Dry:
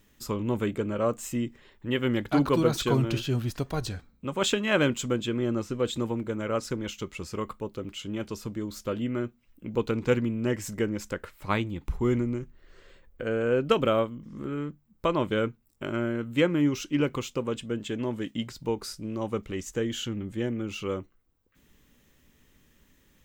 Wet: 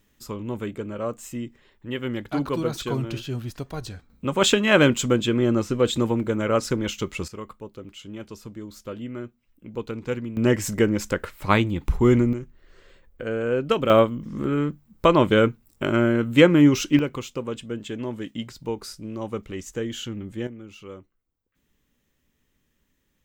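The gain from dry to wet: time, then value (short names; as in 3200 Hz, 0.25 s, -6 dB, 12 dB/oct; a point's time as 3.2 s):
-2.5 dB
from 4.1 s +7 dB
from 7.28 s -4 dB
from 10.37 s +8 dB
from 12.33 s +1 dB
from 13.9 s +9 dB
from 16.99 s 0 dB
from 20.47 s -9 dB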